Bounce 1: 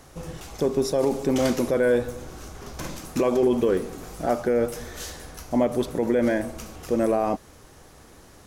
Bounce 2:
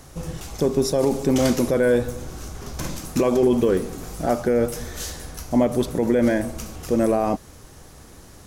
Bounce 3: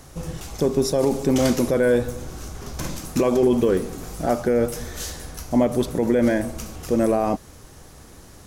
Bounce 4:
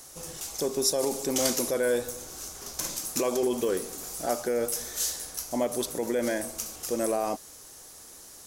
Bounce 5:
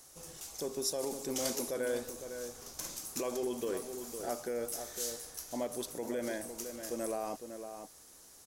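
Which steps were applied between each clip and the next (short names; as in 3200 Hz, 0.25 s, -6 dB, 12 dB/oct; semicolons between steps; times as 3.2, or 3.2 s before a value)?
tone controls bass +5 dB, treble +4 dB; gain +1.5 dB
nothing audible
tone controls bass -13 dB, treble +12 dB; gain -6 dB
outdoor echo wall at 87 m, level -8 dB; gain -9 dB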